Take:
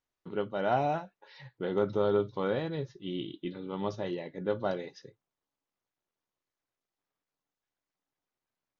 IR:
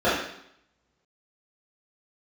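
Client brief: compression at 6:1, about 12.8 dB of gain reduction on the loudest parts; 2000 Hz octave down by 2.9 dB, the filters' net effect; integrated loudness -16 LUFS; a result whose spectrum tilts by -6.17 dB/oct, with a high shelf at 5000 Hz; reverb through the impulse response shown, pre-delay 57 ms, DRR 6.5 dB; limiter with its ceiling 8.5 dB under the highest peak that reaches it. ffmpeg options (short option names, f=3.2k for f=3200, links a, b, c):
-filter_complex "[0:a]equalizer=f=2k:t=o:g=-3.5,highshelf=f=5k:g=-6.5,acompressor=threshold=-37dB:ratio=6,alimiter=level_in=10.5dB:limit=-24dB:level=0:latency=1,volume=-10.5dB,asplit=2[a][b];[1:a]atrim=start_sample=2205,adelay=57[c];[b][c]afir=irnorm=-1:irlink=0,volume=-26.5dB[d];[a][d]amix=inputs=2:normalize=0,volume=28.5dB"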